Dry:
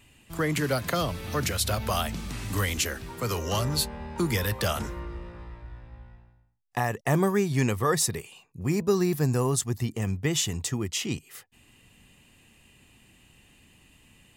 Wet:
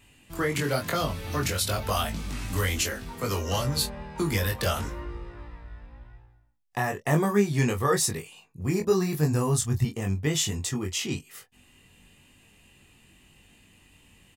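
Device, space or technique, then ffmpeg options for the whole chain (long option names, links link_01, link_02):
double-tracked vocal: -filter_complex "[0:a]asplit=2[link_01][link_02];[link_02]adelay=24,volume=-12dB[link_03];[link_01][link_03]amix=inputs=2:normalize=0,flanger=delay=19.5:depth=2.3:speed=0.96,asettb=1/sr,asplit=3[link_04][link_05][link_06];[link_04]atrim=end=8.984[link_07];[link_05]atrim=start=8.98:end=9.85,asetpts=PTS-STARTPTS,afade=type=in:duration=0.004:curve=qsin,afade=type=out:start_time=0.866:duration=0.004:curve=qsin,asubboost=boost=12:cutoff=150[link_08];[link_06]atrim=start=9.846[link_09];[link_07][link_08]acrossfade=duration=0.004:curve1=hsin:curve2=qsin[link_10];[link_10][link_09]acrossfade=duration=0.004:curve1=qsin:curve2=hsin,volume=3dB"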